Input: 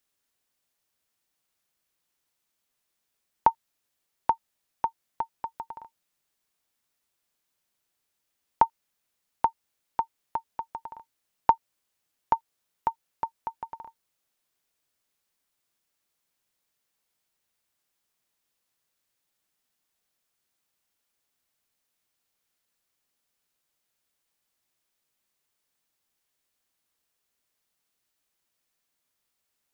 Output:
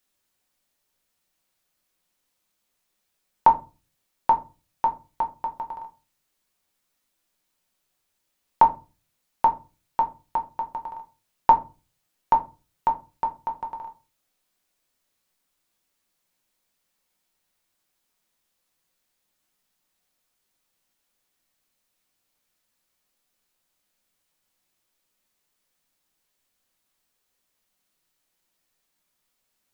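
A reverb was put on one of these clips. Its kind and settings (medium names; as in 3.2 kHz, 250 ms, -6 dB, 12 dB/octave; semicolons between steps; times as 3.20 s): simulated room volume 120 m³, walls furnished, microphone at 1 m; trim +2 dB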